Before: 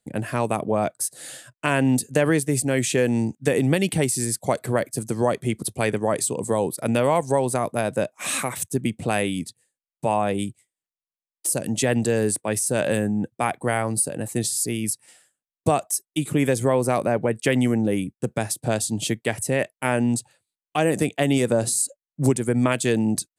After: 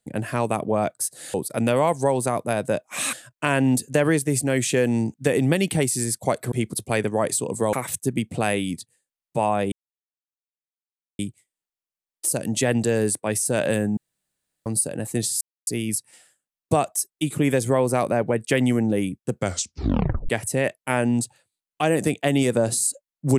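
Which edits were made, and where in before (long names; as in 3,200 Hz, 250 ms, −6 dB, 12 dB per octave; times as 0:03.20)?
0:04.73–0:05.41: remove
0:06.62–0:08.41: move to 0:01.34
0:10.40: splice in silence 1.47 s
0:13.18–0:13.87: fill with room tone
0:14.62: splice in silence 0.26 s
0:18.32: tape stop 0.92 s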